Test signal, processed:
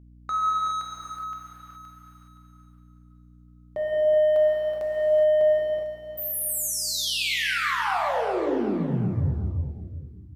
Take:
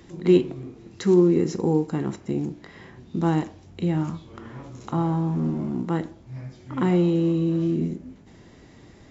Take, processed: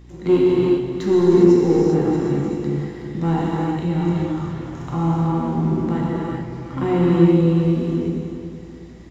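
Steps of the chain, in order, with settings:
dynamic equaliser 6,600 Hz, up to −5 dB, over −54 dBFS, Q 1.3
leveller curve on the samples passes 1
reverb whose tail is shaped and stops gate 440 ms flat, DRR −5.5 dB
mains hum 60 Hz, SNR 24 dB
on a send: repeating echo 373 ms, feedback 40%, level −10 dB
on the sum: level −5 dB

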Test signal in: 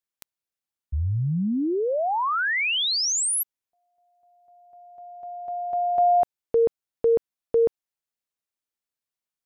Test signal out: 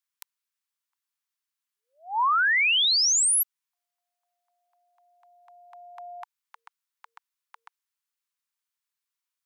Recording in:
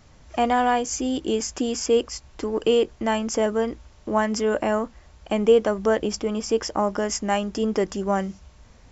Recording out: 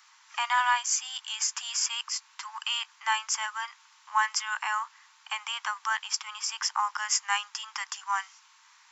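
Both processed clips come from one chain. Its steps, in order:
Butterworth high-pass 900 Hz 72 dB per octave
level +2.5 dB

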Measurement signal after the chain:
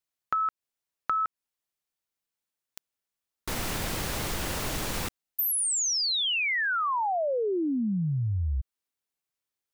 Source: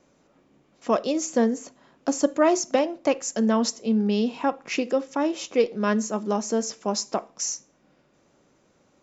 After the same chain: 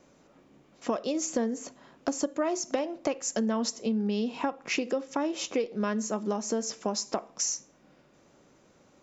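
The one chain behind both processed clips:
downward compressor 6 to 1, threshold −28 dBFS
level +2 dB

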